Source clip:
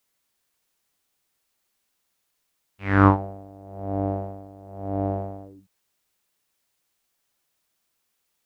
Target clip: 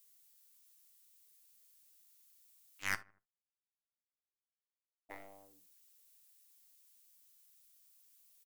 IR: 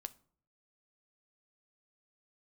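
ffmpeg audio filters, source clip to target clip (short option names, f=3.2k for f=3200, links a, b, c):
-filter_complex "[0:a]aderivative,asoftclip=type=tanh:threshold=-31dB,asplit=3[a][b][c];[a]afade=t=out:st=2.94:d=0.02[d];[b]acrusher=bits=3:mix=0:aa=0.5,afade=t=in:st=2.94:d=0.02,afade=t=out:st=5.09:d=0.02[e];[c]afade=t=in:st=5.09:d=0.02[f];[d][e][f]amix=inputs=3:normalize=0,aeval=exprs='0.0282*(cos(1*acos(clip(val(0)/0.0282,-1,1)))-cos(1*PI/2))+0.00631*(cos(7*acos(clip(val(0)/0.0282,-1,1)))-cos(7*PI/2))+0.000562*(cos(8*acos(clip(val(0)/0.0282,-1,1)))-cos(8*PI/2))':c=same,asplit=2[g][h];[h]adelay=78,lowpass=f=1.4k:p=1,volume=-20.5dB,asplit=2[i][j];[j]adelay=78,lowpass=f=1.4k:p=1,volume=0.47,asplit=2[k][l];[l]adelay=78,lowpass=f=1.4k:p=1,volume=0.47[m];[g][i][k][m]amix=inputs=4:normalize=0[n];[1:a]atrim=start_sample=2205,atrim=end_sample=3528[o];[n][o]afir=irnorm=-1:irlink=0,volume=14.5dB"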